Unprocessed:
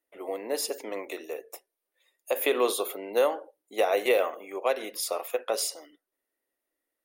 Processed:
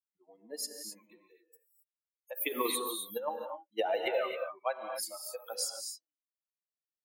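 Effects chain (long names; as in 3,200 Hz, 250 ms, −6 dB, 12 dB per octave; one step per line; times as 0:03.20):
spectral dynamics exaggerated over time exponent 3
0:02.47–0:04.39: compressor whose output falls as the input rises −30 dBFS, ratio −0.5
reverb whose tail is shaped and stops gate 290 ms rising, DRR 4 dB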